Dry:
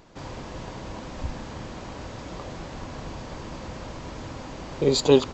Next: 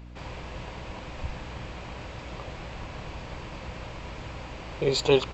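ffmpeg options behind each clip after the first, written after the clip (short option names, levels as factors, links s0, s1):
-af "equalizer=f=250:t=o:w=0.67:g=-9,equalizer=f=2500:t=o:w=0.67:g=7,equalizer=f=6300:t=o:w=0.67:g=-5,aeval=exprs='val(0)+0.00891*(sin(2*PI*60*n/s)+sin(2*PI*2*60*n/s)/2+sin(2*PI*3*60*n/s)/3+sin(2*PI*4*60*n/s)/4+sin(2*PI*5*60*n/s)/5)':c=same,volume=0.794"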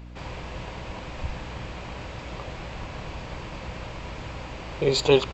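-af "aecho=1:1:72:0.0794,volume=1.33"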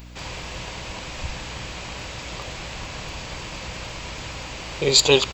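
-af "crystalizer=i=5:c=0"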